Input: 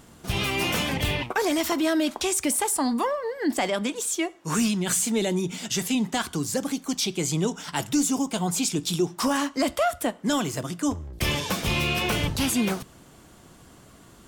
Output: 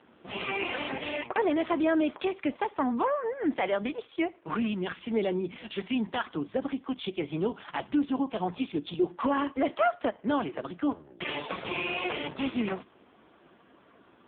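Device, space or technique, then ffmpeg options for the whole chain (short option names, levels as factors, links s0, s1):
telephone: -filter_complex "[0:a]asettb=1/sr,asplit=3[s0][s1][s2];[s0]atrim=end=4.074[s3];[s1]atrim=start=4.07:end=5.48,asetpts=PTS-STARTPTS,afade=t=in:d=0.004:c=qsin,afade=t=out:st=1.406:d=0.004:c=qsin,adynamicequalizer=threshold=0.0224:dfrequency=6800:dqfactor=1:tfrequency=6800:tqfactor=1:attack=5:release=100:ratio=0.375:range=1.5:mode=cutabove:tftype=bell[s4];[s2]atrim=start=5.476[s5];[s3][s4]acrossfade=d=0.004:c1=hsin:c2=qsin[s6];[s6][s5]acrossfade=d=0.004:c1=qsin:c2=hsin,highpass=280,lowpass=3200" -ar 8000 -c:a libopencore_amrnb -b:a 5150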